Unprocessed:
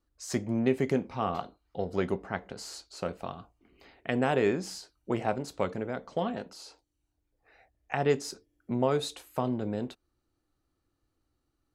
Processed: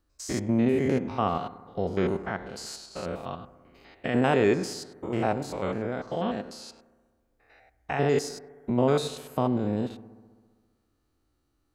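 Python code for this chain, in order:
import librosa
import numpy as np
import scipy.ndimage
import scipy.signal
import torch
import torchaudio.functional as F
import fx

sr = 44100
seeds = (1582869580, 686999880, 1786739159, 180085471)

y = fx.spec_steps(x, sr, hold_ms=100)
y = fx.echo_bbd(y, sr, ms=66, stages=1024, feedback_pct=75, wet_db=-18.5)
y = y * 10.0 ** (5.5 / 20.0)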